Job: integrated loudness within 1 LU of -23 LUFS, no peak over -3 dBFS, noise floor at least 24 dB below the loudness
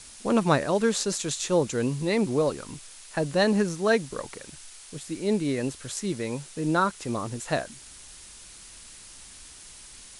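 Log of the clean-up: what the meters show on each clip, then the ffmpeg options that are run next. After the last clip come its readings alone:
noise floor -47 dBFS; noise floor target -51 dBFS; loudness -26.5 LUFS; peak -8.0 dBFS; loudness target -23.0 LUFS
-> -af "afftdn=nr=6:nf=-47"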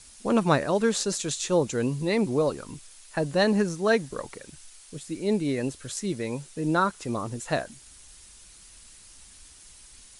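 noise floor -51 dBFS; loudness -26.5 LUFS; peak -8.0 dBFS; loudness target -23.0 LUFS
-> -af "volume=3.5dB"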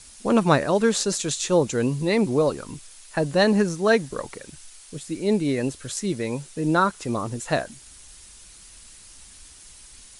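loudness -23.0 LUFS; peak -4.5 dBFS; noise floor -47 dBFS

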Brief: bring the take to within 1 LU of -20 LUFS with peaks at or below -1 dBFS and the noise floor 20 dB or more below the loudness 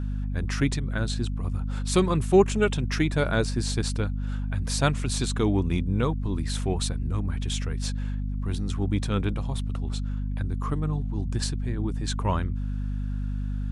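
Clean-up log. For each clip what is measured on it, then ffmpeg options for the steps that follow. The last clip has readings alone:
hum 50 Hz; harmonics up to 250 Hz; hum level -26 dBFS; loudness -27.5 LUFS; peak -7.0 dBFS; loudness target -20.0 LUFS
-> -af "bandreject=f=50:t=h:w=4,bandreject=f=100:t=h:w=4,bandreject=f=150:t=h:w=4,bandreject=f=200:t=h:w=4,bandreject=f=250:t=h:w=4"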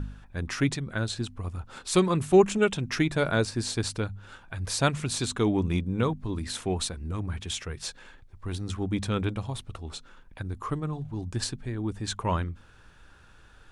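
hum none; loudness -29.0 LUFS; peak -7.5 dBFS; loudness target -20.0 LUFS
-> -af "volume=9dB,alimiter=limit=-1dB:level=0:latency=1"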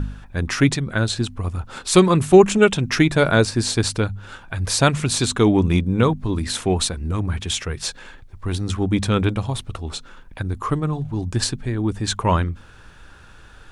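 loudness -20.0 LUFS; peak -1.0 dBFS; noise floor -45 dBFS

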